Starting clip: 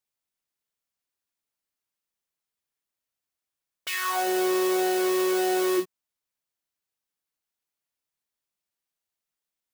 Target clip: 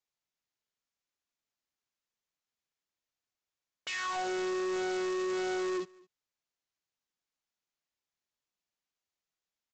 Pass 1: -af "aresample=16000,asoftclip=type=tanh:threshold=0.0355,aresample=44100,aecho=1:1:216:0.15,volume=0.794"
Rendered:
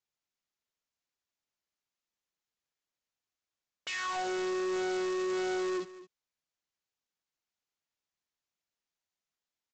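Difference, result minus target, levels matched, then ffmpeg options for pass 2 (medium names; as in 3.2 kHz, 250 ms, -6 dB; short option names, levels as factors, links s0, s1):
echo-to-direct +9 dB
-af "aresample=16000,asoftclip=type=tanh:threshold=0.0355,aresample=44100,aecho=1:1:216:0.0531,volume=0.794"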